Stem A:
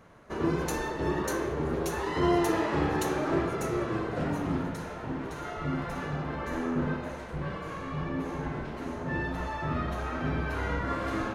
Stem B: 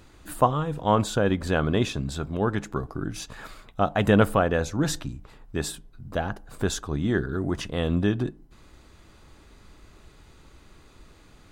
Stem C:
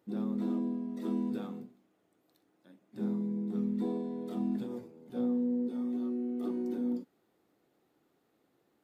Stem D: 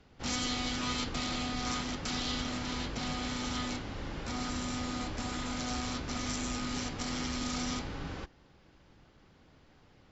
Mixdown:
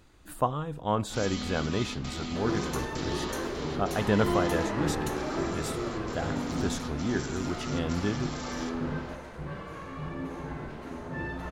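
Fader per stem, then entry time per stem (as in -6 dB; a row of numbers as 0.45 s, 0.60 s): -3.5 dB, -6.5 dB, -7.5 dB, -4.5 dB; 2.05 s, 0.00 s, 1.10 s, 0.90 s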